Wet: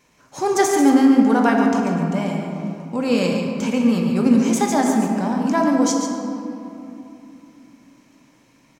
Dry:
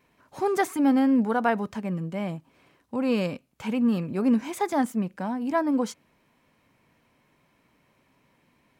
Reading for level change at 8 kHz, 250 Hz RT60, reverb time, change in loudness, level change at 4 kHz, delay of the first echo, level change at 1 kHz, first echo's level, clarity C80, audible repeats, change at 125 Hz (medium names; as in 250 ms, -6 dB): +16.0 dB, 3.9 s, 2.9 s, +7.5 dB, +11.0 dB, 141 ms, +7.5 dB, -8.0 dB, 2.0 dB, 1, +8.0 dB